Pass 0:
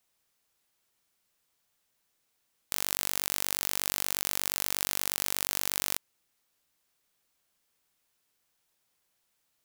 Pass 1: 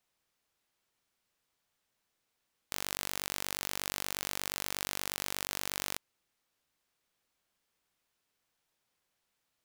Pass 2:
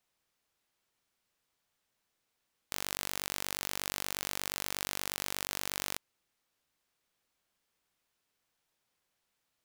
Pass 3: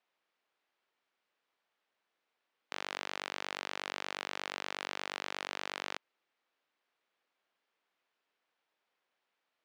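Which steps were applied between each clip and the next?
treble shelf 6.4 kHz -8 dB; trim -1.5 dB
no audible change
band-pass 340–3100 Hz; trim +2 dB

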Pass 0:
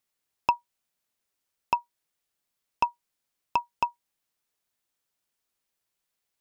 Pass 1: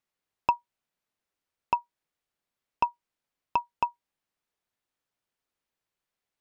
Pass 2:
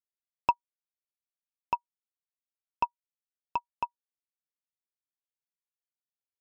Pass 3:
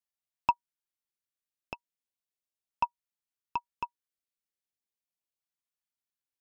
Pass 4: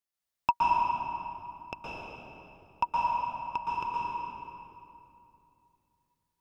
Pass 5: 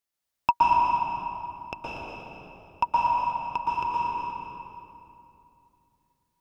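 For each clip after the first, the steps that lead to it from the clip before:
treble shelf 4.4 kHz -11.5 dB
upward expansion 2.5:1, over -39 dBFS
LFO notch saw up 0.37 Hz 370–1700 Hz
reverberation RT60 2.8 s, pre-delay 113 ms, DRR -6 dB
echo whose repeats swap between lows and highs 119 ms, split 950 Hz, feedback 52%, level -4 dB; trim +3.5 dB

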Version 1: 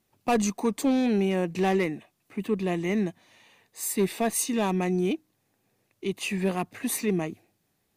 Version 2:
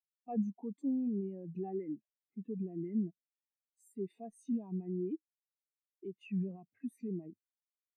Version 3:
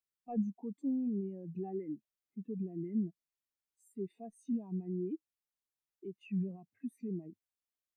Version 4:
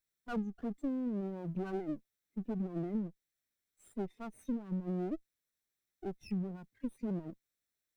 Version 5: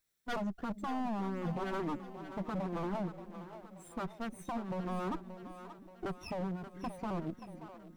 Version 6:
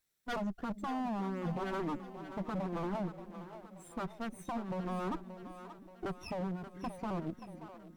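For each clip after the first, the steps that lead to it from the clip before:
peak limiter -27 dBFS, peak gain reduction 11.5 dB; spectral contrast expander 2.5:1; trim +2.5 dB
bass shelf 110 Hz +7.5 dB; trim -1.5 dB
comb filter that takes the minimum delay 0.52 ms; compression 6:1, threshold -39 dBFS, peak gain reduction 10.5 dB; trim +6 dB
wavefolder -37 dBFS; two-band feedback delay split 380 Hz, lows 355 ms, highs 579 ms, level -11 dB; trim +6 dB
Opus 256 kbps 48 kHz

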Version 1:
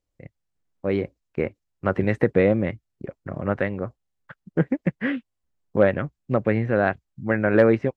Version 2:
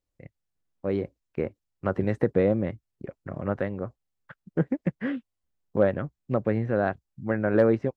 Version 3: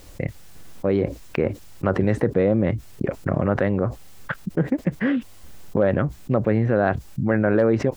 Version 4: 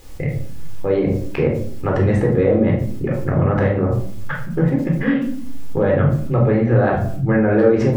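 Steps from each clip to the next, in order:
dynamic bell 2.3 kHz, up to -8 dB, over -42 dBFS, Q 1.3; trim -3.5 dB
level flattener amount 70%
reverberation RT60 0.60 s, pre-delay 14 ms, DRR -1.5 dB; trim -2 dB

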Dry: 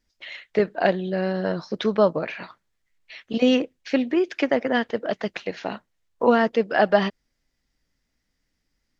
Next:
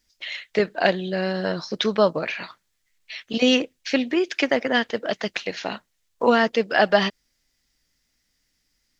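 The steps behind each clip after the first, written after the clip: treble shelf 2.2 kHz +12 dB; trim -1 dB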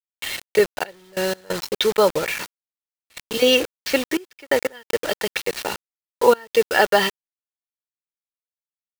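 comb 2.2 ms, depth 61%; bit crusher 5-bit; trance gate "xxxxx..x.x" 90 bpm -24 dB; trim +1.5 dB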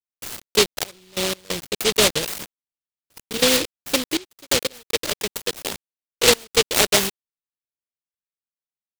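median filter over 3 samples; distance through air 280 m; delay time shaken by noise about 3.3 kHz, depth 0.32 ms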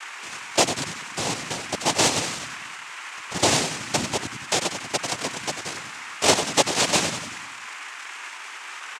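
frequency-shifting echo 94 ms, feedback 58%, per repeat -85 Hz, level -8.5 dB; band noise 1.1–2.7 kHz -35 dBFS; noise-vocoded speech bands 4; trim -2.5 dB

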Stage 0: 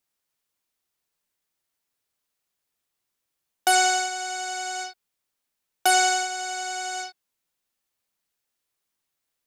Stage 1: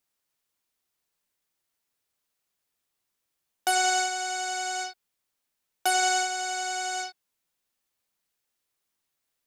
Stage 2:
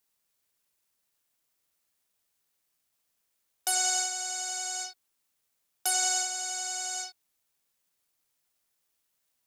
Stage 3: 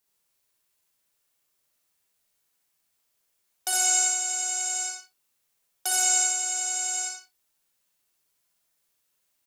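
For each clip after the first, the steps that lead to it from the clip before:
peak limiter -14.5 dBFS, peak gain reduction 6.5 dB
tone controls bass -14 dB, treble +13 dB; bit crusher 11-bit; trim -9 dB
on a send: multi-tap echo 58/68/120 ms -6/-4.5/-19.5 dB; on the sum: gated-style reverb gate 100 ms rising, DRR 4.5 dB

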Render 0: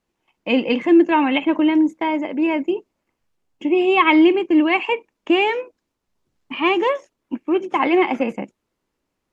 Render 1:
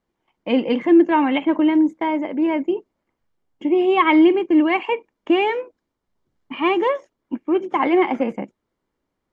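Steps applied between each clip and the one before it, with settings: treble shelf 4.1 kHz -10.5 dB; band-stop 2.6 kHz, Q 9.8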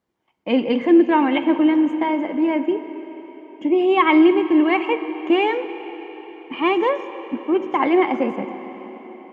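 high-pass 68 Hz; algorithmic reverb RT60 4.8 s, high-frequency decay 0.85×, pre-delay 10 ms, DRR 10 dB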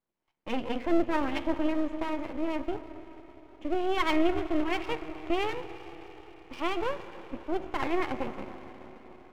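half-wave rectifier; trim -8 dB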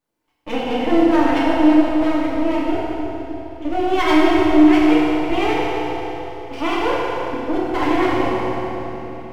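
bucket-brigade echo 308 ms, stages 2048, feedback 56%, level -6.5 dB; FDN reverb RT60 2.5 s, low-frequency decay 0.9×, high-frequency decay 0.95×, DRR -6.5 dB; trim +4.5 dB

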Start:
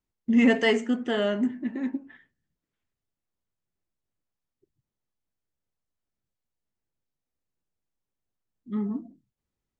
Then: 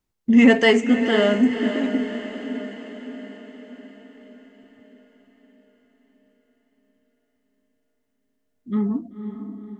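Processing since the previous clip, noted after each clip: echo that smears into a reverb 518 ms, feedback 56%, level -9 dB; trim +6.5 dB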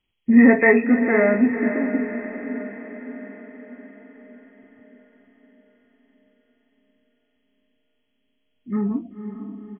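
knee-point frequency compression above 1.8 kHz 4:1; doubling 21 ms -13 dB

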